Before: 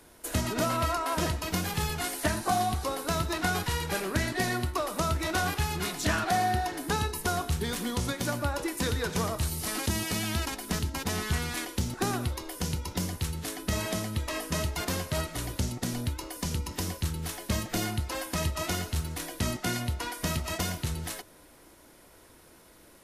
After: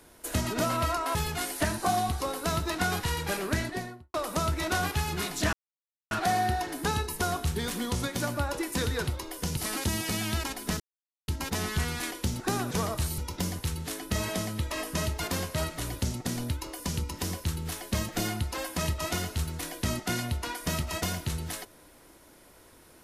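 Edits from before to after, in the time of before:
0:01.15–0:01.78: remove
0:04.13–0:04.77: fade out and dull
0:06.16: splice in silence 0.58 s
0:09.12–0:09.59: swap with 0:12.25–0:12.75
0:10.82: splice in silence 0.48 s

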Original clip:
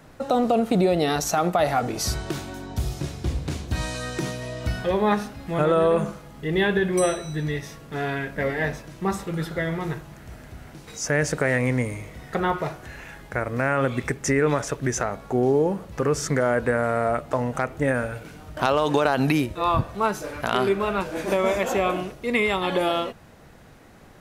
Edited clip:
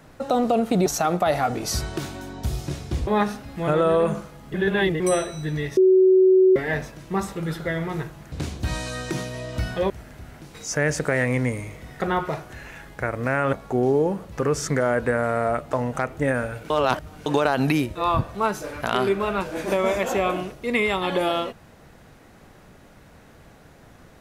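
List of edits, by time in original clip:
0:00.86–0:01.19: remove
0:03.40–0:04.98: move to 0:10.23
0:06.45–0:06.91: reverse
0:07.68–0:08.47: beep over 375 Hz −11.5 dBFS
0:13.86–0:15.13: remove
0:18.30–0:18.86: reverse

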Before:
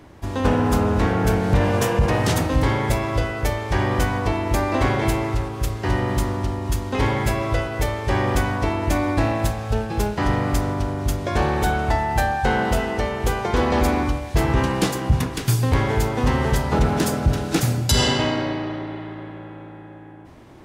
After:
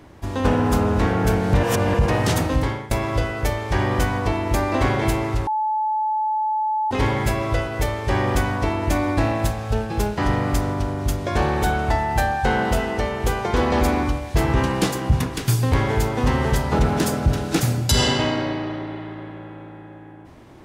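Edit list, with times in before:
0:01.63–0:01.94: reverse
0:02.52–0:02.91: fade out, to −19 dB
0:05.47–0:06.91: beep over 864 Hz −19 dBFS

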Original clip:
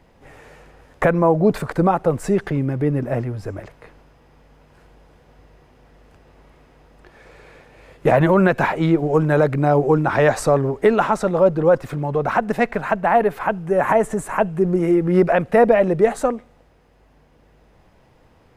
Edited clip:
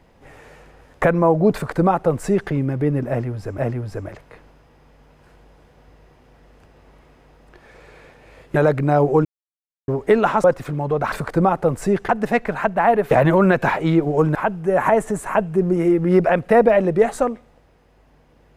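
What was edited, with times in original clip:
0:01.54–0:02.51: duplicate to 0:12.36
0:03.09–0:03.58: repeat, 2 plays
0:08.07–0:09.31: move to 0:13.38
0:10.00–0:10.63: silence
0:11.19–0:11.68: remove

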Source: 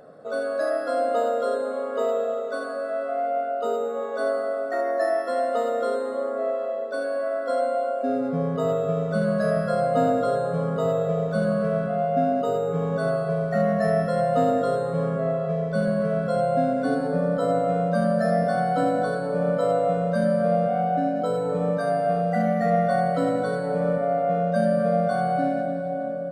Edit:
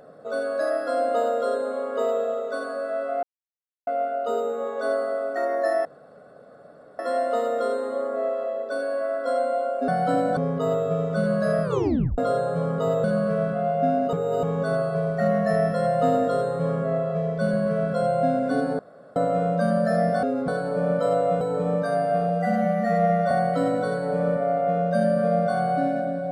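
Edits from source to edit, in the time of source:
0:03.23: splice in silence 0.64 s
0:05.21: splice in room tone 1.14 s
0:08.10–0:08.35: swap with 0:18.57–0:19.06
0:09.61: tape stop 0.55 s
0:11.02–0:11.38: remove
0:12.47–0:12.77: reverse
0:17.13–0:17.50: fill with room tone
0:19.99–0:21.36: remove
0:22.24–0:22.92: time-stretch 1.5×

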